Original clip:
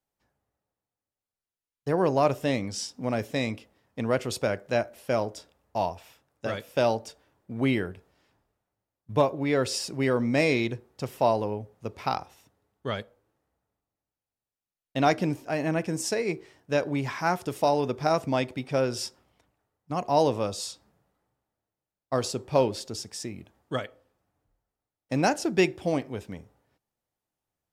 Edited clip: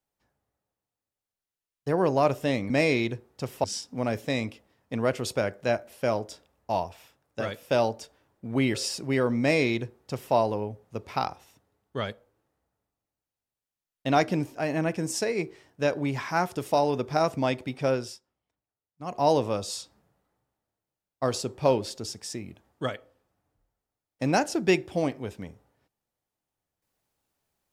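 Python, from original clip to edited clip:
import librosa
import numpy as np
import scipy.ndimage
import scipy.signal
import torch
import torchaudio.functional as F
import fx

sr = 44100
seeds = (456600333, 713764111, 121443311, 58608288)

y = fx.edit(x, sr, fx.cut(start_s=7.8, length_s=1.84),
    fx.duplicate(start_s=10.3, length_s=0.94, to_s=2.7),
    fx.fade_down_up(start_s=18.83, length_s=1.28, db=-18.0, fade_s=0.25), tone=tone)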